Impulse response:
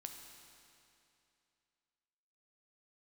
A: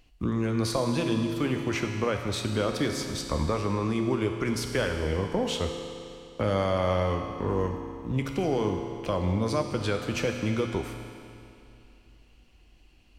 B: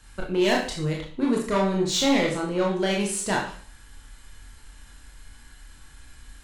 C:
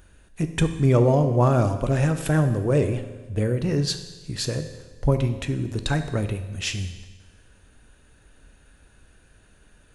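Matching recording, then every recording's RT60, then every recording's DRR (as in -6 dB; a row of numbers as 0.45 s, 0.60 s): A; 2.7 s, 0.45 s, 1.3 s; 4.0 dB, -2.0 dB, 8.0 dB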